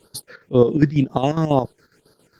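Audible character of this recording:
phaser sweep stages 6, 2 Hz, lowest notch 740–2,400 Hz
chopped level 7.3 Hz, depth 65%, duty 60%
Opus

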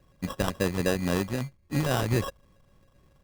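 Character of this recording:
a buzz of ramps at a fixed pitch in blocks of 16 samples
phaser sweep stages 4, 3.7 Hz, lowest notch 490–3,300 Hz
aliases and images of a low sample rate 2,200 Hz, jitter 0%

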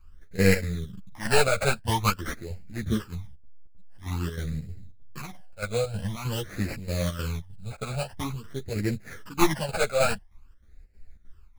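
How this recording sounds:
aliases and images of a low sample rate 3,700 Hz, jitter 20%
phaser sweep stages 12, 0.48 Hz, lowest notch 310–1,100 Hz
chopped level 3.2 Hz, depth 60%, duty 70%
a shimmering, thickened sound

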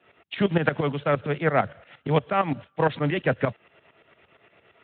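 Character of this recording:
tremolo saw up 8.7 Hz, depth 80%
Speex

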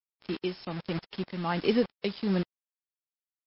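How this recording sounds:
a quantiser's noise floor 6 bits, dither none
tremolo triangle 1.3 Hz, depth 55%
MP3

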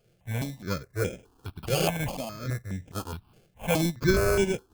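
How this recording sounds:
tremolo saw up 2.3 Hz, depth 30%
aliases and images of a low sample rate 1,900 Hz, jitter 0%
notches that jump at a steady rate 4.8 Hz 260–4,300 Hz

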